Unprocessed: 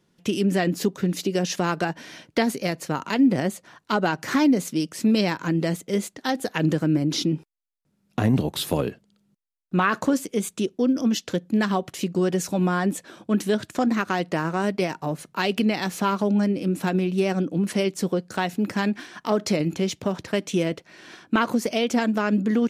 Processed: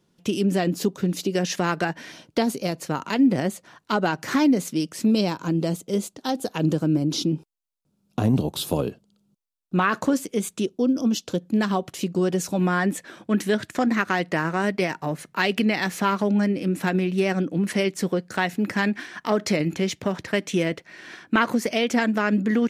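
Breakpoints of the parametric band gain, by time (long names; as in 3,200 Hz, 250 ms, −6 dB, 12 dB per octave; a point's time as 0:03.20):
parametric band 1,900 Hz 0.66 octaves
−4.5 dB
from 0:01.35 +3.5 dB
from 0:02.12 −7.5 dB
from 0:02.80 −1 dB
from 0:05.05 −11 dB
from 0:09.76 −0.5 dB
from 0:10.68 −10.5 dB
from 0:11.42 −2.5 dB
from 0:12.60 +6.5 dB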